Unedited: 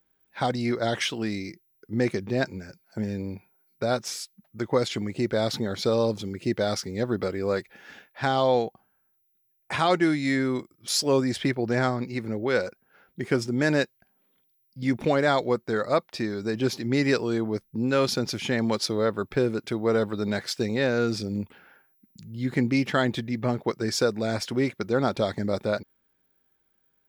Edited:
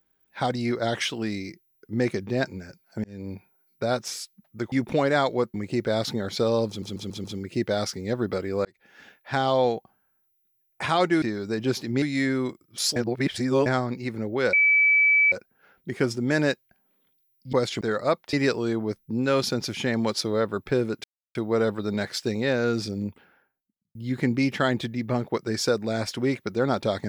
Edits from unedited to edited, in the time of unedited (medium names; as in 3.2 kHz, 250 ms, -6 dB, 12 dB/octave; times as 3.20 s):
3.04–3.32 s: fade in
4.72–5.00 s: swap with 14.84–15.66 s
6.14 s: stutter 0.14 s, 5 plays
7.55–8.33 s: fade in equal-power
11.06–11.76 s: reverse
12.63 s: add tone 2.3 kHz -15.5 dBFS 0.79 s
16.18–16.98 s: move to 10.12 s
19.69 s: insert silence 0.31 s
21.21–22.29 s: studio fade out